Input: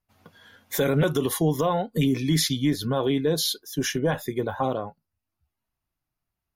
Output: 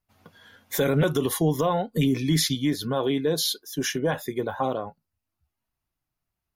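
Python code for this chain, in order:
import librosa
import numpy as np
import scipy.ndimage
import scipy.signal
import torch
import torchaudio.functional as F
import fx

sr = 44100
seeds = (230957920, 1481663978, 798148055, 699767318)

y = fx.low_shelf(x, sr, hz=110.0, db=-9.0, at=(2.55, 4.87))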